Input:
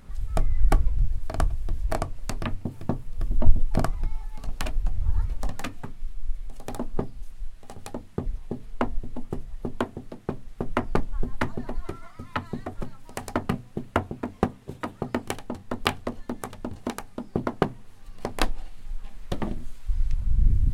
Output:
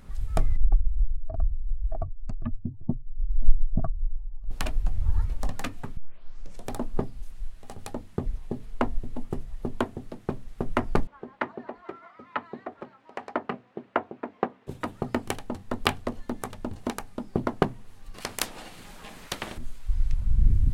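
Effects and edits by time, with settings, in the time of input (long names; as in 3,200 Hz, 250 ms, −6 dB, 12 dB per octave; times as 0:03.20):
0:00.56–0:04.51: expanding power law on the bin magnitudes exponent 2.1
0:05.97: tape start 0.73 s
0:11.07–0:14.67: band-pass filter 350–2,400 Hz
0:18.14–0:19.58: every bin compressed towards the loudest bin 4 to 1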